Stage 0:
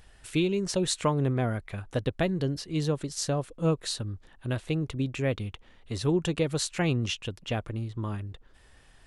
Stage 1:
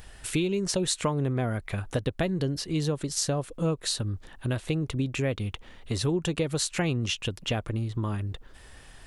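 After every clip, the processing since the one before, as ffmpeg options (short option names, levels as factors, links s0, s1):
-af "highshelf=f=9300:g=5.5,acompressor=threshold=0.0178:ratio=2.5,volume=2.37"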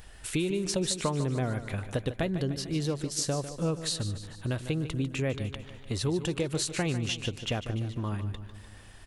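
-af "aecho=1:1:149|298|447|596|745|894:0.251|0.141|0.0788|0.0441|0.0247|0.0138,volume=0.75"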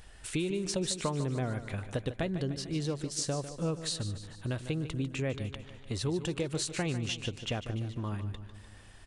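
-af "aresample=22050,aresample=44100,volume=0.708"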